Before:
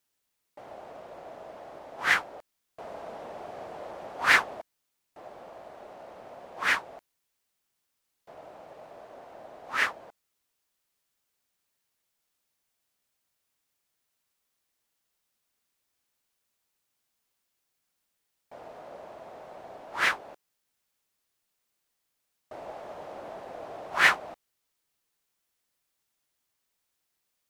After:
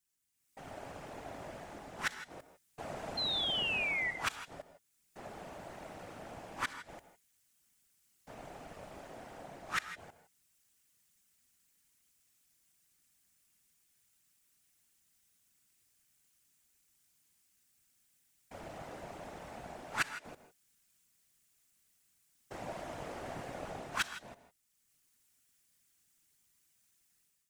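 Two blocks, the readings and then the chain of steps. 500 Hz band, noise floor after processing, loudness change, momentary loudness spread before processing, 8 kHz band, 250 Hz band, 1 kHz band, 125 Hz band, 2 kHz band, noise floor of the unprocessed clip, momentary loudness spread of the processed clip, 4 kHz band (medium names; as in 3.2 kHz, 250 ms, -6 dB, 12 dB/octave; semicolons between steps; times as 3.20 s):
-5.5 dB, -75 dBFS, -12.0 dB, 25 LU, -5.0 dB, -0.5 dB, -9.0 dB, +3.5 dB, -11.5 dB, -80 dBFS, 21 LU, -1.0 dB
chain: self-modulated delay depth 0.26 ms; graphic EQ 125/500/1000/4000/8000 Hz +6/-10/-7/-4/+5 dB; level rider gain up to 11 dB; inverted gate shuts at -12 dBFS, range -32 dB; whisper effect; painted sound fall, 3.17–4.11 s, 1.9–4.2 kHz -29 dBFS; gated-style reverb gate 180 ms rising, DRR 10.5 dB; trim -5.5 dB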